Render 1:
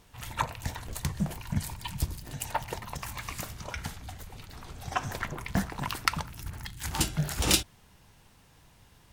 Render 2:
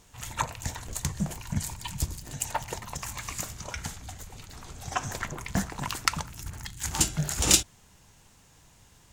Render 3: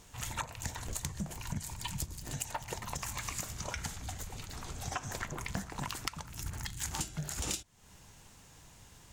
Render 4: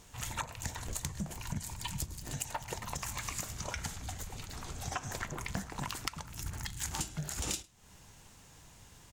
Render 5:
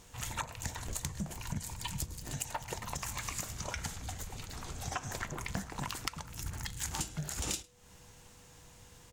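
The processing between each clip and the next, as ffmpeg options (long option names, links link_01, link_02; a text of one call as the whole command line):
ffmpeg -i in.wav -af "equalizer=frequency=7000:width=2.1:gain=10" out.wav
ffmpeg -i in.wav -af "acompressor=threshold=-35dB:ratio=8,volume=1dB" out.wav
ffmpeg -i in.wav -filter_complex "[0:a]asplit=2[link_01][link_02];[link_02]adelay=105,volume=-22dB,highshelf=frequency=4000:gain=-2.36[link_03];[link_01][link_03]amix=inputs=2:normalize=0" out.wav
ffmpeg -i in.wav -af "aeval=exprs='val(0)+0.000447*sin(2*PI*490*n/s)':channel_layout=same" out.wav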